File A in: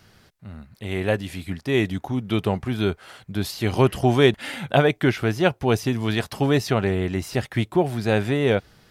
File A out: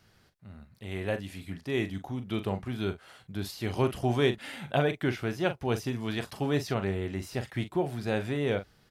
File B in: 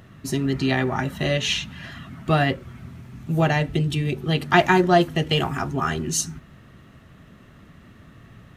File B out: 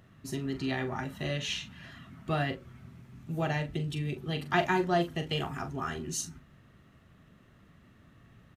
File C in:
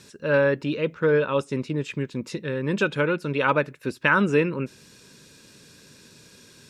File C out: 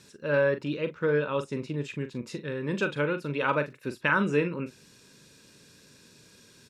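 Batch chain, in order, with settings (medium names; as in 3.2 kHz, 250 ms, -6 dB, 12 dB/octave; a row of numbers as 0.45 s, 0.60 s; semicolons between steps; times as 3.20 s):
doubling 41 ms -10 dB; peak normalisation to -12 dBFS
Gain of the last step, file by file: -9.0 dB, -11.0 dB, -5.5 dB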